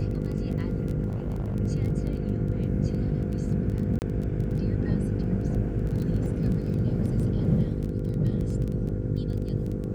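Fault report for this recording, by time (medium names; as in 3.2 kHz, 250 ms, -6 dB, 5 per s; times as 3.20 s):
buzz 50 Hz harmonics 10 -31 dBFS
crackle 14 per s -31 dBFS
1.07–1.56 s: clipped -25.5 dBFS
3.99–4.02 s: dropout 29 ms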